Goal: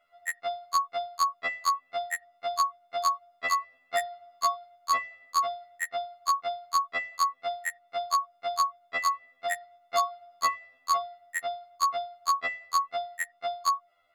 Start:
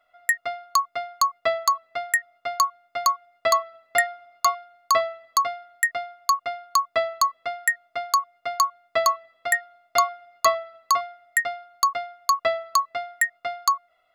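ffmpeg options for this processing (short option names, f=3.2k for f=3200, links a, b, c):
-filter_complex "[0:a]acrossover=split=570|6400[a][b][c];[a]acompressor=threshold=-41dB:ratio=4[d];[b]acompressor=threshold=-22dB:ratio=4[e];[c]acompressor=threshold=-39dB:ratio=4[f];[d][e][f]amix=inputs=3:normalize=0,afftfilt=real='re*2*eq(mod(b,4),0)':imag='im*2*eq(mod(b,4),0)':win_size=2048:overlap=0.75"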